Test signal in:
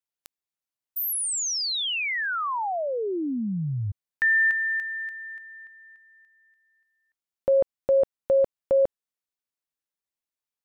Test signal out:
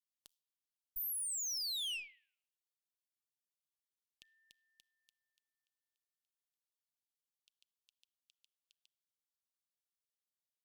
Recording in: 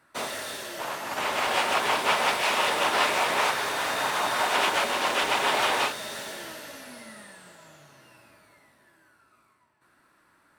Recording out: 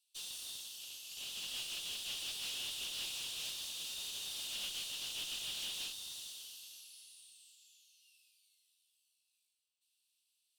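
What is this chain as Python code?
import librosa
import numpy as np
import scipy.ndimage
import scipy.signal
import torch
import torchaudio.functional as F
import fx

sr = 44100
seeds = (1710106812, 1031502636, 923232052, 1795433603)

y = scipy.signal.sosfilt(scipy.signal.butter(12, 2800.0, 'highpass', fs=sr, output='sos'), x)
y = fx.room_shoebox(y, sr, seeds[0], volume_m3=2900.0, walls='furnished', distance_m=0.32)
y = fx.tube_stage(y, sr, drive_db=33.0, bias=0.4)
y = y * 10.0 ** (-4.5 / 20.0)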